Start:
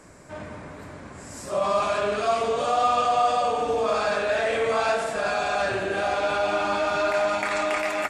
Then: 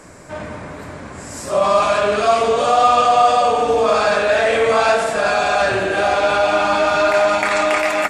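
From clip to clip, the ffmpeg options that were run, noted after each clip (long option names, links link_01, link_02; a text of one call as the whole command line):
ffmpeg -i in.wav -af "bandreject=frequency=50:width_type=h:width=6,bandreject=frequency=100:width_type=h:width=6,bandreject=frequency=150:width_type=h:width=6,bandreject=frequency=200:width_type=h:width=6,bandreject=frequency=250:width_type=h:width=6,bandreject=frequency=300:width_type=h:width=6,bandreject=frequency=350:width_type=h:width=6,bandreject=frequency=400:width_type=h:width=6,volume=8.5dB" out.wav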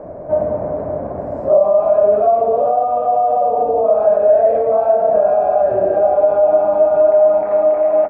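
ffmpeg -i in.wav -af "alimiter=limit=-12dB:level=0:latency=1:release=320,acompressor=threshold=-27dB:ratio=2.5,lowpass=frequency=640:width_type=q:width=4.9,volume=4.5dB" out.wav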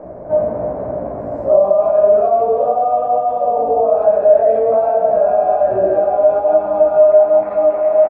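ffmpeg -i in.wav -filter_complex "[0:a]flanger=delay=15.5:depth=2.5:speed=1.2,asplit=2[link_01][link_02];[link_02]aecho=0:1:162:0.282[link_03];[link_01][link_03]amix=inputs=2:normalize=0,volume=2.5dB" out.wav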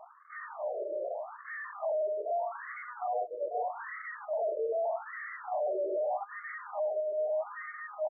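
ffmpeg -i in.wav -af "flanger=delay=0.9:depth=9:regen=-54:speed=0.25:shape=triangular,aeval=exprs='(tanh(20*val(0)+0.45)-tanh(0.45))/20':channel_layout=same,afftfilt=real='re*between(b*sr/1024,430*pow(1600/430,0.5+0.5*sin(2*PI*0.81*pts/sr))/1.41,430*pow(1600/430,0.5+0.5*sin(2*PI*0.81*pts/sr))*1.41)':imag='im*between(b*sr/1024,430*pow(1600/430,0.5+0.5*sin(2*PI*0.81*pts/sr))/1.41,430*pow(1600/430,0.5+0.5*sin(2*PI*0.81*pts/sr))*1.41)':win_size=1024:overlap=0.75,volume=-2.5dB" out.wav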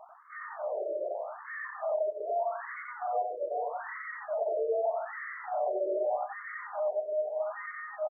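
ffmpeg -i in.wav -af "aecho=1:1:90:0.631" out.wav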